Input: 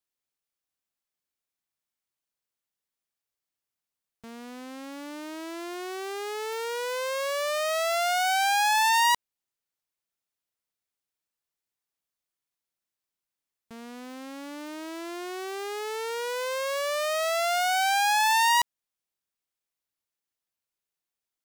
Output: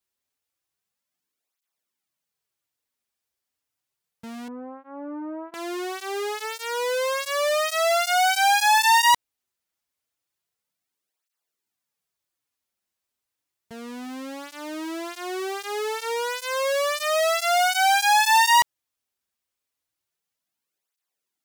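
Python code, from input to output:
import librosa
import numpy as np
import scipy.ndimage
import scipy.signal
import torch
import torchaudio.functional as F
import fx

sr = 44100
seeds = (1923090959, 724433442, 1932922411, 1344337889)

y = fx.lowpass(x, sr, hz=1200.0, slope=24, at=(4.48, 5.54))
y = fx.flanger_cancel(y, sr, hz=0.31, depth_ms=7.2)
y = F.gain(torch.from_numpy(y), 7.5).numpy()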